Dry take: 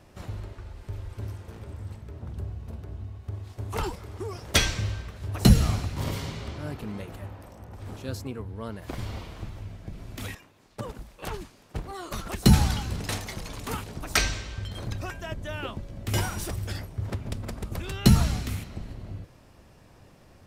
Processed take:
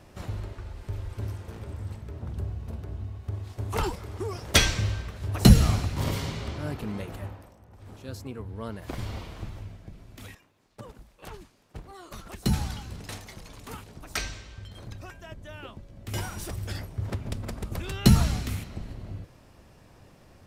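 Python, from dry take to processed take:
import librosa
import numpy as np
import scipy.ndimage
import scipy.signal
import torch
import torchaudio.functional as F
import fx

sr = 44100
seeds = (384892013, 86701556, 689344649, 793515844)

y = fx.gain(x, sr, db=fx.line((7.27, 2.0), (7.61, -10.0), (8.56, 0.0), (9.56, 0.0), (10.06, -8.0), (15.92, -8.0), (16.82, 0.0)))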